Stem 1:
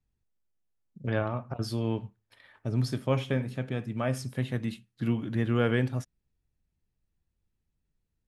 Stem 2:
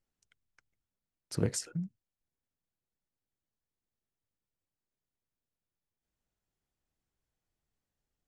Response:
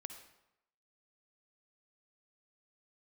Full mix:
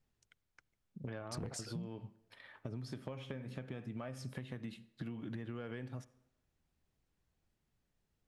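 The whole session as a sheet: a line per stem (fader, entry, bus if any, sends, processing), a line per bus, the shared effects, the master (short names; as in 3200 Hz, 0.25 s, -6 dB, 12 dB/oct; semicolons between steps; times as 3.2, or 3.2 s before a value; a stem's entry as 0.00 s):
-1.0 dB, 0.00 s, send -8.5 dB, low shelf 69 Hz -10.5 dB; compressor, threshold -36 dBFS, peak gain reduction 14 dB
+2.5 dB, 0.00 s, send -20 dB, dry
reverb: on, RT60 0.85 s, pre-delay 49 ms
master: high shelf 7300 Hz -8.5 dB; soft clip -22.5 dBFS, distortion -12 dB; compressor 10:1, threshold -39 dBFS, peak gain reduction 13 dB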